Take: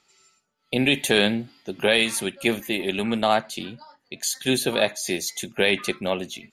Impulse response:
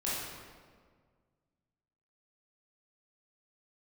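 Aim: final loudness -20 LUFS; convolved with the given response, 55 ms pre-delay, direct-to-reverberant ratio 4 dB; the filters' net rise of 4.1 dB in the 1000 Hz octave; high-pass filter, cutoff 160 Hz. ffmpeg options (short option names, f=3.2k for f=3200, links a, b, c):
-filter_complex "[0:a]highpass=160,equalizer=f=1k:t=o:g=6,asplit=2[a][b];[1:a]atrim=start_sample=2205,adelay=55[c];[b][c]afir=irnorm=-1:irlink=0,volume=-10dB[d];[a][d]amix=inputs=2:normalize=0,volume=1.5dB"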